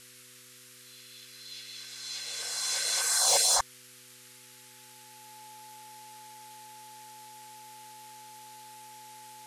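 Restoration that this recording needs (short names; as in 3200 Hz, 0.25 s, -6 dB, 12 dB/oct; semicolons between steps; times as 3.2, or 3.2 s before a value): clip repair -16.5 dBFS; de-hum 124.7 Hz, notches 4; notch 860 Hz, Q 30; noise print and reduce 24 dB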